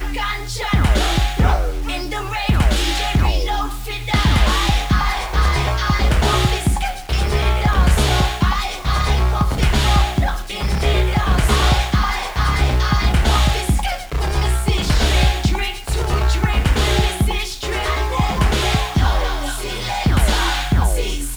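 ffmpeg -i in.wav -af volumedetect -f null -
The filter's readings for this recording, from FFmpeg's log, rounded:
mean_volume: -16.7 dB
max_volume: -4.5 dB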